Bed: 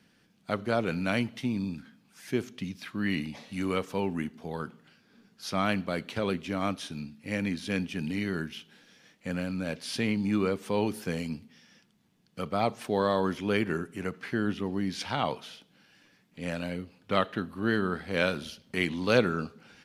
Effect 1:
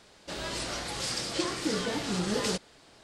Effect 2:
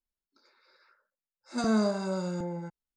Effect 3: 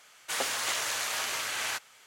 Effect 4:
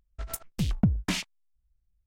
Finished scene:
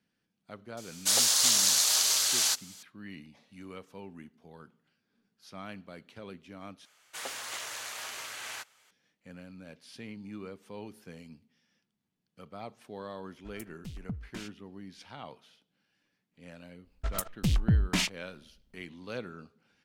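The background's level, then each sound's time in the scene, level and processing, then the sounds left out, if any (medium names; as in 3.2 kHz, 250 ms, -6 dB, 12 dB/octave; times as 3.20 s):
bed -15.5 dB
0.77 s: add 3 -2.5 dB + resonant high shelf 3.2 kHz +11.5 dB, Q 1.5
6.85 s: replace with 3 -8 dB
13.26 s: add 4 -15 dB
16.85 s: add 4 -16 dB + loudness maximiser +20 dB
not used: 1, 2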